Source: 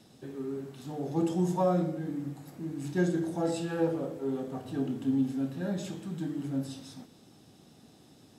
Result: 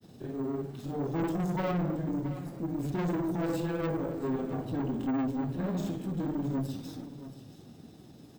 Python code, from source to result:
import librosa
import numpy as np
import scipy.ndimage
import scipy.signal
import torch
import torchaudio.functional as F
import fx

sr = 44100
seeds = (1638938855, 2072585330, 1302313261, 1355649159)

p1 = fx.low_shelf(x, sr, hz=410.0, db=9.5)
p2 = fx.hum_notches(p1, sr, base_hz=50, count=5)
p3 = fx.tube_stage(p2, sr, drive_db=29.0, bias=0.4)
p4 = fx.granulator(p3, sr, seeds[0], grain_ms=100.0, per_s=20.0, spray_ms=16.0, spread_st=0)
p5 = p4 + fx.echo_single(p4, sr, ms=674, db=-14.0, dry=0)
p6 = np.repeat(p5[::2], 2)[:len(p5)]
y = F.gain(torch.from_numpy(p6), 2.0).numpy()